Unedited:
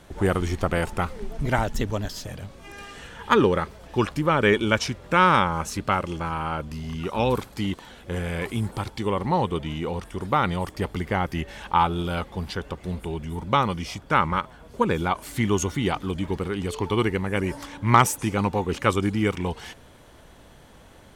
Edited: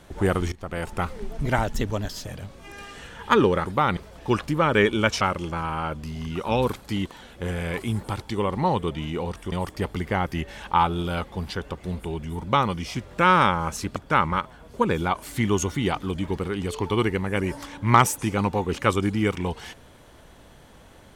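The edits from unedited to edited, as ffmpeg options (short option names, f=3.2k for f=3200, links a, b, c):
-filter_complex "[0:a]asplit=8[a][b][c][d][e][f][g][h];[a]atrim=end=0.52,asetpts=PTS-STARTPTS,afade=t=out:st=0.516:d=0.004:c=hsin:silence=0.0891251[i];[b]atrim=start=0.52:end=3.652,asetpts=PTS-STARTPTS,afade=t=in:d=0.56:silence=0.0891251[j];[c]atrim=start=10.198:end=10.522[k];[d]atrim=start=3.648:end=4.892[l];[e]atrim=start=5.888:end=10.202[m];[f]atrim=start=10.518:end=13.962[n];[g]atrim=start=4.888:end=5.892[o];[h]atrim=start=13.958[p];[i][j]concat=n=2:v=0:a=1[q];[q][k]acrossfade=d=0.004:c1=hsin:c2=hsin[r];[r][l]acrossfade=d=0.004:c1=hsin:c2=hsin[s];[s][m]acrossfade=d=0.004:c1=hsin:c2=hsin[t];[t][n]acrossfade=d=0.004:c1=hsin:c2=hsin[u];[u][o]acrossfade=d=0.004:c1=hsin:c2=hsin[v];[v][p]acrossfade=d=0.004:c1=hsin:c2=hsin"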